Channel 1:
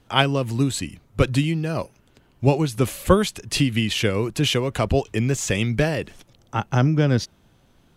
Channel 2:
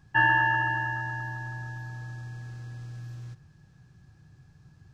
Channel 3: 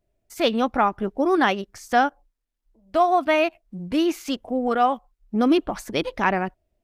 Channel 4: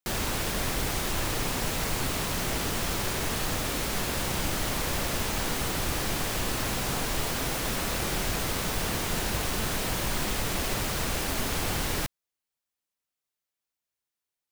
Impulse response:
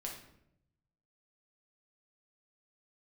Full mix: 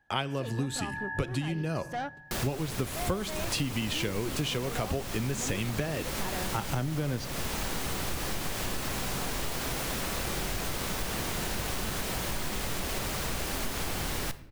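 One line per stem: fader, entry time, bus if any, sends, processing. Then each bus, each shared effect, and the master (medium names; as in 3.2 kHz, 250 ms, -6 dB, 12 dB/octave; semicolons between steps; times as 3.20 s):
-2.0 dB, 0.00 s, send -11.5 dB, gate -51 dBFS, range -20 dB
-4.0 dB, 0.00 s, no send, compressor with a negative ratio -33 dBFS; two resonant band-passes 1.2 kHz, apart 1 oct
-10.0 dB, 0.00 s, send -20 dB, saturation -20 dBFS, distortion -9 dB
-3.0 dB, 2.25 s, send -8 dB, none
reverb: on, RT60 0.80 s, pre-delay 5 ms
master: compression 6:1, threshold -28 dBFS, peak gain reduction 16.5 dB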